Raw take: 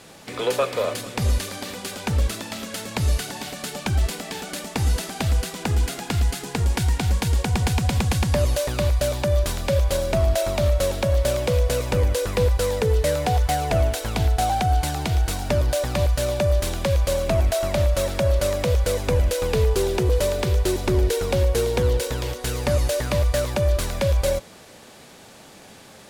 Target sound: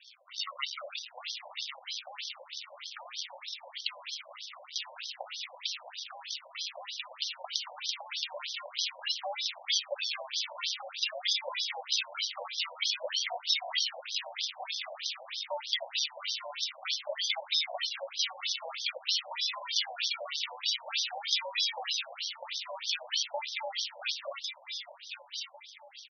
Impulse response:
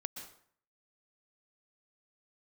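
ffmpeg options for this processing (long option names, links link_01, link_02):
-filter_complex "[0:a]highpass=frequency=63:width=0.5412,highpass=frequency=63:width=1.3066,acrusher=samples=42:mix=1:aa=0.000001:lfo=1:lforange=25.2:lforate=0.5,aexciter=amount=7.4:drive=4.6:freq=2400,asplit=2[link_01][link_02];[link_02]aecho=0:1:1100|2200|3300|4400:0.376|0.132|0.046|0.0161[link_03];[link_01][link_03]amix=inputs=2:normalize=0,afftfilt=real='re*between(b*sr/1024,700*pow(4500/700,0.5+0.5*sin(2*PI*3.2*pts/sr))/1.41,700*pow(4500/700,0.5+0.5*sin(2*PI*3.2*pts/sr))*1.41)':imag='im*between(b*sr/1024,700*pow(4500/700,0.5+0.5*sin(2*PI*3.2*pts/sr))/1.41,700*pow(4500/700,0.5+0.5*sin(2*PI*3.2*pts/sr))*1.41)':win_size=1024:overlap=0.75,volume=-9dB"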